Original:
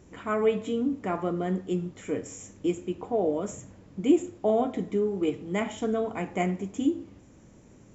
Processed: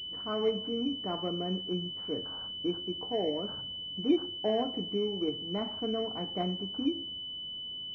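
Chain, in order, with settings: class-D stage that switches slowly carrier 3 kHz; trim -5.5 dB

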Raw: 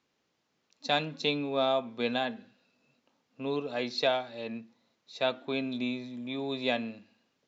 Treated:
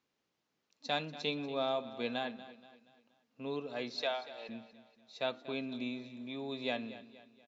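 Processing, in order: 4.02–4.49 s: high-pass 550 Hz 12 dB/octave; feedback delay 238 ms, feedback 43%, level -15.5 dB; trim -6.5 dB

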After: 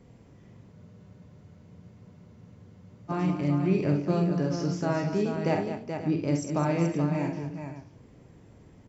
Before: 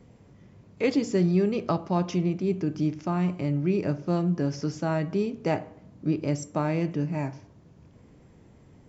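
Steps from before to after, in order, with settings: multi-tap echo 48/66/209/430/537 ms -6.5/-9/-9.5/-7/-14 dB; spectral freeze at 0.75 s, 2.34 s; trim -1.5 dB

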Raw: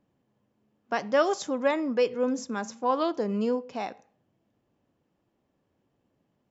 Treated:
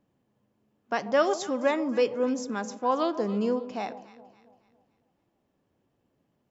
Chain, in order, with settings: echo whose repeats swap between lows and highs 139 ms, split 930 Hz, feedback 63%, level -12.5 dB

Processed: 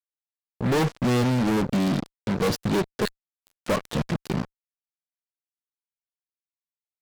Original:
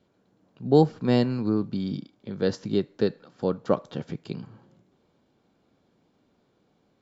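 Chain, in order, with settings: coarse spectral quantiser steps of 15 dB; 3.05–3.59 s: elliptic high-pass 1.5 kHz, stop band 60 dB; fuzz box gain 39 dB, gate -39 dBFS; trim -6.5 dB

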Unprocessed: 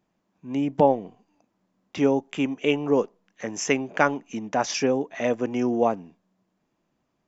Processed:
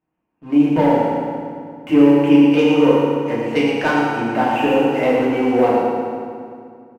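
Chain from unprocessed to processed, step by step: elliptic low-pass 2.8 kHz; in parallel at +1 dB: peak limiter -14 dBFS, peak gain reduction 10 dB; on the sum: waveshaping leveller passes 2; delay 121 ms -6.5 dB; FDN reverb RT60 2.3 s, low-frequency decay 1.3×, high-frequency decay 0.75×, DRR -7.5 dB; speed mistake 24 fps film run at 25 fps; trim -12 dB

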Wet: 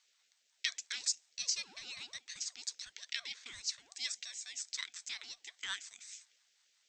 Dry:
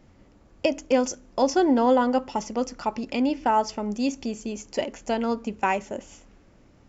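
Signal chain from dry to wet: inverse Chebyshev high-pass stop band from 1.4 kHz, stop band 40 dB; ring modulator with a swept carrier 720 Hz, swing 35%, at 5.6 Hz; trim +3.5 dB

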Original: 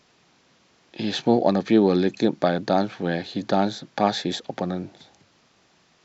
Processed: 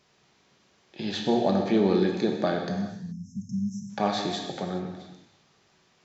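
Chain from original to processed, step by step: spectral selection erased 2.69–3.90 s, 240–5200 Hz; gated-style reverb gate 450 ms falling, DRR 1 dB; trim -6 dB

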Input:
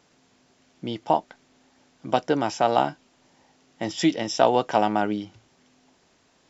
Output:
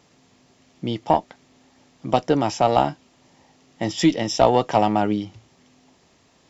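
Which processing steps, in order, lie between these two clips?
single-diode clipper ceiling -6.5 dBFS; peaking EQ 100 Hz +5 dB 1.8 oct; band-stop 1.5 kHz, Q 9.7; trim +3.5 dB

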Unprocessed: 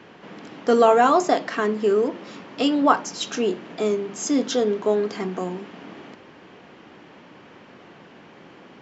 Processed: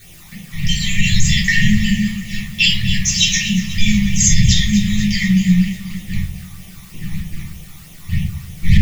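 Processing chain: wind noise 540 Hz -36 dBFS; FFT band-reject 210–1700 Hz; gate -43 dBFS, range -18 dB; word length cut 10-bit, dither triangular; phase shifter stages 12, 3.2 Hz, lowest notch 470–1600 Hz; echo whose repeats swap between lows and highs 122 ms, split 1.5 kHz, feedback 78%, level -13 dB; simulated room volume 220 m³, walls furnished, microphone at 3.6 m; loudness maximiser +14.5 dB; trim -1 dB

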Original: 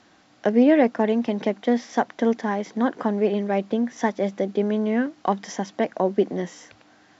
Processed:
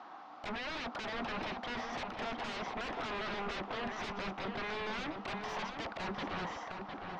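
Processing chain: high-pass 300 Hz 12 dB/octave; high-order bell 970 Hz +12.5 dB 1.1 oct; peak limiter -16.5 dBFS, peak gain reduction 18 dB; wavefolder -33.5 dBFS; distance through air 230 m; filtered feedback delay 707 ms, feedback 33%, low-pass 3.6 kHz, level -5.5 dB; trim +1 dB

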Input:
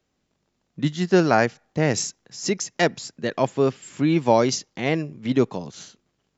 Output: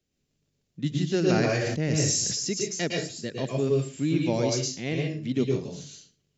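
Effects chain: peaking EQ 980 Hz -14.5 dB 1.7 oct; reverberation RT60 0.35 s, pre-delay 106 ms, DRR -0.5 dB; 1.25–2.51 s: decay stretcher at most 20 dB/s; trim -4 dB

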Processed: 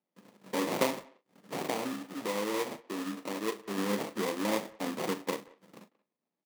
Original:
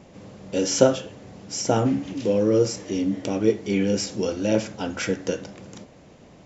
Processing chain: compression 2:1, threshold -42 dBFS, peak gain reduction 17 dB; gate -41 dBFS, range -43 dB; 1.57–3.78 s: bass shelf 430 Hz -7 dB; sample-rate reducer 1.5 kHz, jitter 20%; high-pass 180 Hz 24 dB/octave; doubling 39 ms -12.5 dB; speakerphone echo 180 ms, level -21 dB; trim +4 dB

